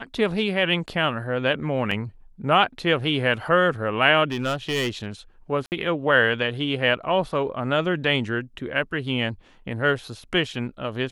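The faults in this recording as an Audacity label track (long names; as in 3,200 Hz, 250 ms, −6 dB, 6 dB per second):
1.910000	1.910000	drop-out 4.3 ms
4.310000	5.070000	clipping −20 dBFS
5.660000	5.720000	drop-out 59 ms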